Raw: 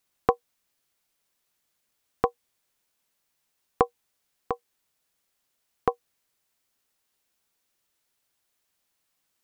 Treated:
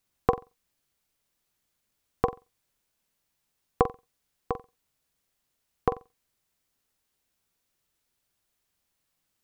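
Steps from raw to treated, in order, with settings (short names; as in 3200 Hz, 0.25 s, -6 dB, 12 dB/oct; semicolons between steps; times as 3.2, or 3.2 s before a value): low shelf 210 Hz +9.5 dB; on a send: flutter echo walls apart 7.7 m, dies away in 0.24 s; on the sum: gain -2.5 dB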